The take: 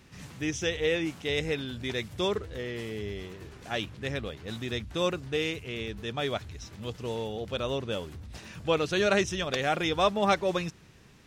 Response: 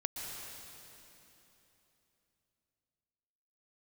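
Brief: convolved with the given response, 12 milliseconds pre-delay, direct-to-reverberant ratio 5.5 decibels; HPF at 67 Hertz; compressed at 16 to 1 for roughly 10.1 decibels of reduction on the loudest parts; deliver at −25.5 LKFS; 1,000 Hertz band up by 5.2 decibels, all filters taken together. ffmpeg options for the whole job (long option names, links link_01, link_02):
-filter_complex "[0:a]highpass=67,equalizer=frequency=1000:width_type=o:gain=7,acompressor=threshold=-25dB:ratio=16,asplit=2[link_01][link_02];[1:a]atrim=start_sample=2205,adelay=12[link_03];[link_02][link_03]afir=irnorm=-1:irlink=0,volume=-7.5dB[link_04];[link_01][link_04]amix=inputs=2:normalize=0,volume=6dB"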